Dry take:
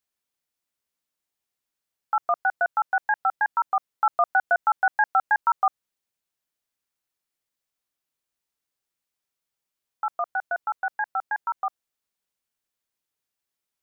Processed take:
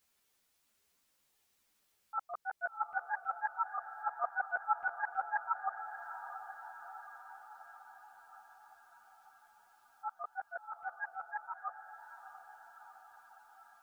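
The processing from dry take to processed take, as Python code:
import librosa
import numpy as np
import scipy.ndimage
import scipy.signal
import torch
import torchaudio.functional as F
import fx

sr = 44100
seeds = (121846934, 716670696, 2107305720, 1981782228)

y = fx.auto_swell(x, sr, attack_ms=438.0)
y = fx.echo_diffused(y, sr, ms=672, feedback_pct=64, wet_db=-10.5)
y = fx.ensemble(y, sr)
y = F.gain(torch.from_numpy(y), 12.5).numpy()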